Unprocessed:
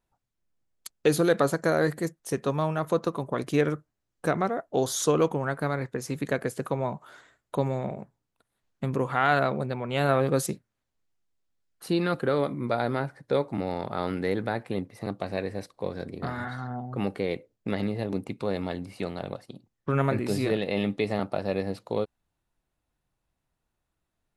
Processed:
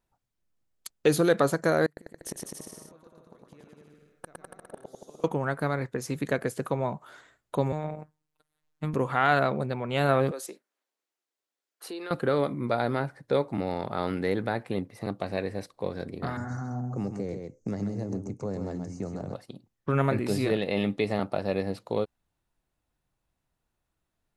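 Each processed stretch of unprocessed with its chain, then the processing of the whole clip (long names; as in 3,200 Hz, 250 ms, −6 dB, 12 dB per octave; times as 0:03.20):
0:01.86–0:05.24: gate with flip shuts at −24 dBFS, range −33 dB + bouncing-ball delay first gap 110 ms, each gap 0.85×, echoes 10, each echo −2 dB
0:07.72–0:08.94: dynamic equaliser 1,300 Hz, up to +4 dB, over −50 dBFS, Q 1.2 + phases set to zero 153 Hz
0:10.31–0:12.11: high-pass filter 330 Hz 24 dB per octave + downward compressor 3 to 1, threshold −37 dBFS
0:16.37–0:19.34: drawn EQ curve 130 Hz 0 dB, 1,500 Hz −11 dB, 3,600 Hz −25 dB, 6,400 Hz +14 dB, 11,000 Hz −20 dB + single-tap delay 130 ms −7 dB + multiband upward and downward compressor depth 70%
whole clip: no processing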